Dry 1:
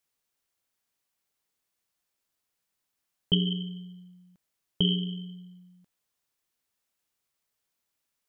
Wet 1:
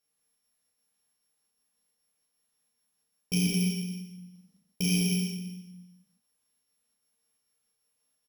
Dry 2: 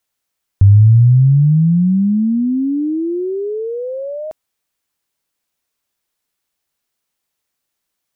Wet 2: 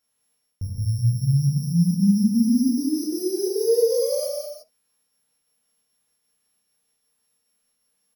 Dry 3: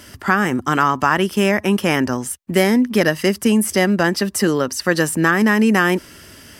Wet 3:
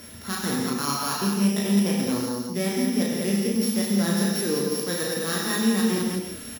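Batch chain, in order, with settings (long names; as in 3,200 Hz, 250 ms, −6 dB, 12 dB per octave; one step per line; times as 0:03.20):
samples sorted by size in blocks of 8 samples
high-shelf EQ 6,800 Hz +6.5 dB
reversed playback
downward compressor 5 to 1, threshold −24 dBFS
reversed playback
gate pattern "xxxx.xxx." 173 BPM −24 dB
hollow resonant body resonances 220/470 Hz, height 9 dB, ringing for 65 ms
on a send: loudspeakers that aren't time-aligned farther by 12 metres −4 dB, 71 metres −4 dB
on the sum: reverb whose tail is shaped and stops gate 190 ms flat, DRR −1.5 dB
level −5 dB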